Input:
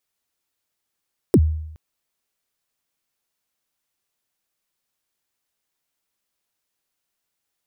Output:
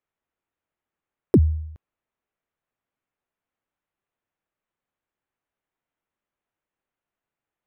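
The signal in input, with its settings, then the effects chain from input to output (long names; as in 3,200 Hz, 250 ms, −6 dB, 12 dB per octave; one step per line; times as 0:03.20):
synth kick length 0.42 s, from 460 Hz, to 78 Hz, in 55 ms, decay 0.80 s, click on, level −7.5 dB
adaptive Wiener filter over 9 samples
high-shelf EQ 4,500 Hz −11.5 dB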